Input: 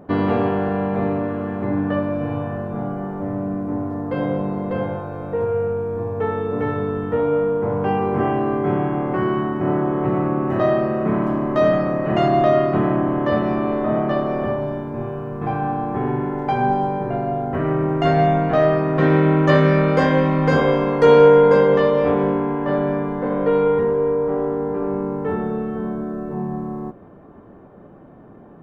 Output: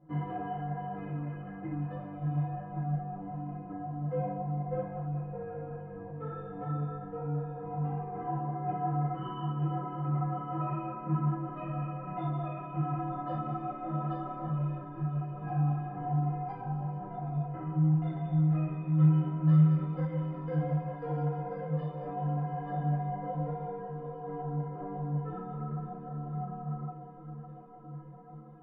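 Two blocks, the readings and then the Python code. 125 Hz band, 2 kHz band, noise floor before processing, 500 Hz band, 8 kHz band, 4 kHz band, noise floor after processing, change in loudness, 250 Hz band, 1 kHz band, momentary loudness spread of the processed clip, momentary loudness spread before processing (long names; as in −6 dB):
−5.5 dB, −24.5 dB, −44 dBFS, −23.5 dB, can't be measured, below −20 dB, −45 dBFS, −13.5 dB, −13.5 dB, −13.5 dB, 12 LU, 11 LU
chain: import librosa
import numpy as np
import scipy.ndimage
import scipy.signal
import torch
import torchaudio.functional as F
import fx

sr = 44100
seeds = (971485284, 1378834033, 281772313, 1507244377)

y = scipy.signal.sosfilt(scipy.signal.butter(2, 2000.0, 'lowpass', fs=sr, output='sos'), x)
y = fx.peak_eq(y, sr, hz=150.0, db=7.5, octaves=0.77)
y = fx.rider(y, sr, range_db=4, speed_s=0.5)
y = fx.stiff_resonator(y, sr, f0_hz=150.0, decay_s=0.63, stiffness=0.03)
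y = fx.echo_diffused(y, sr, ms=850, feedback_pct=70, wet_db=-13)
y = fx.ensemble(y, sr)
y = y * 10.0 ** (1.5 / 20.0)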